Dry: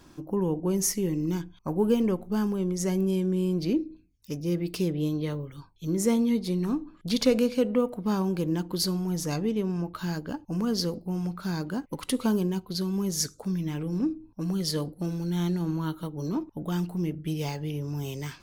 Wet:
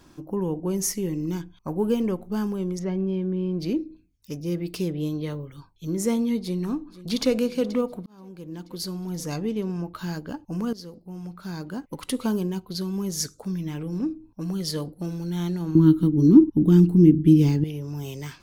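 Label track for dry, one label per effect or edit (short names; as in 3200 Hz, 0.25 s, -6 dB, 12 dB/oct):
2.790000	3.600000	air absorption 300 m
6.410000	7.360000	echo throw 0.48 s, feedback 60%, level -16.5 dB
8.060000	9.430000	fade in
10.730000	12.050000	fade in, from -15 dB
15.750000	17.640000	resonant low shelf 440 Hz +11.5 dB, Q 3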